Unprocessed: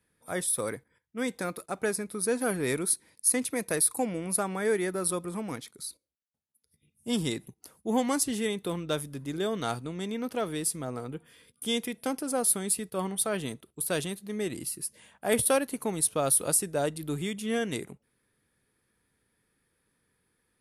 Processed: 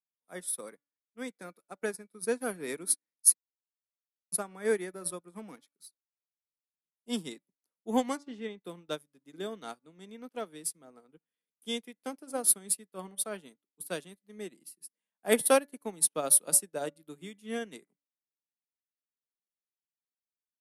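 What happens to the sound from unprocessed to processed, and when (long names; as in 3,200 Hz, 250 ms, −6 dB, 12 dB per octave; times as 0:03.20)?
0:03.34–0:04.32: silence
0:05.36–0:05.88: leveller curve on the samples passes 1
0:08.17–0:08.64: high-frequency loss of the air 160 metres
whole clip: Butterworth high-pass 160 Hz 48 dB per octave; hum removal 287 Hz, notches 8; expander for the loud parts 2.5 to 1, over −48 dBFS; level +4.5 dB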